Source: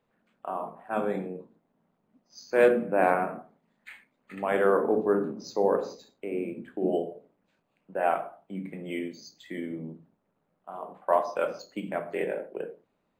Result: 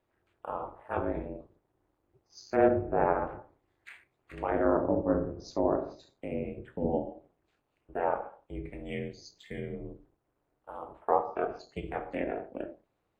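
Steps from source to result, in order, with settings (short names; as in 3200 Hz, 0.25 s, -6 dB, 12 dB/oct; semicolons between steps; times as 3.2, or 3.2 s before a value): ring modulator 130 Hz; 3.27–4.39 overloaded stage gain 35 dB; treble ducked by the level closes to 1300 Hz, closed at -26 dBFS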